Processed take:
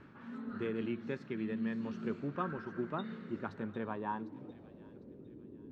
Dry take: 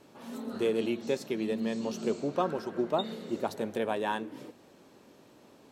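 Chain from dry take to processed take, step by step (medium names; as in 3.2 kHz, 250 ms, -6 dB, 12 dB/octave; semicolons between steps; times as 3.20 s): amplifier tone stack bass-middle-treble 6-0-2; reverse; upward compressor, threshold -59 dBFS; reverse; low-pass sweep 1.5 kHz -> 390 Hz, 3.51–5.43 s; feedback echo behind a high-pass 753 ms, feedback 36%, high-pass 3 kHz, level -11.5 dB; trim +15 dB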